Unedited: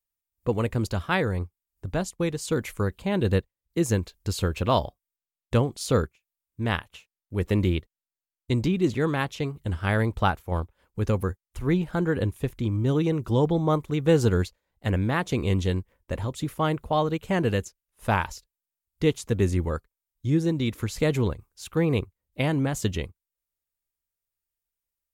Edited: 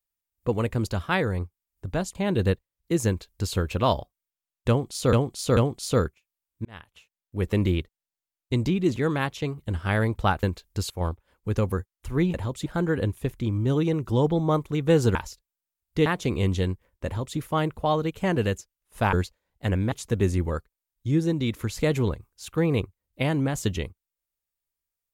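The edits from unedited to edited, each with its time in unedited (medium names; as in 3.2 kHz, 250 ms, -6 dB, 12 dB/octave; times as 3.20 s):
2.15–3.01 s: delete
3.93–4.40 s: copy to 10.41 s
5.55–5.99 s: loop, 3 plays
6.63–7.35 s: fade in
14.34–15.13 s: swap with 18.20–19.11 s
16.13–16.45 s: copy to 11.85 s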